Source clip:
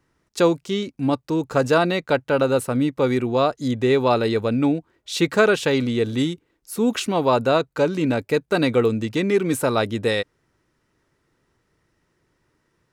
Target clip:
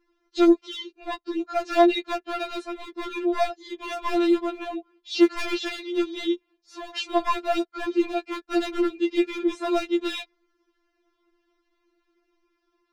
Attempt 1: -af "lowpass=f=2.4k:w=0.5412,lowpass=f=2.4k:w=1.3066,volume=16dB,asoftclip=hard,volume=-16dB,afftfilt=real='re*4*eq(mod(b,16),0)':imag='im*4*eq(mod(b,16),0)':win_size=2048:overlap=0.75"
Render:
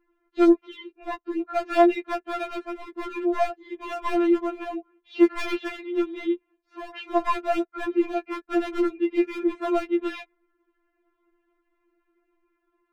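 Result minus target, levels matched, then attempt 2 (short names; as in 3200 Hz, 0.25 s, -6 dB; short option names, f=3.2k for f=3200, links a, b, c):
4000 Hz band -8.5 dB
-af "lowpass=f=5.1k:w=0.5412,lowpass=f=5.1k:w=1.3066,volume=16dB,asoftclip=hard,volume=-16dB,afftfilt=real='re*4*eq(mod(b,16),0)':imag='im*4*eq(mod(b,16),0)':win_size=2048:overlap=0.75"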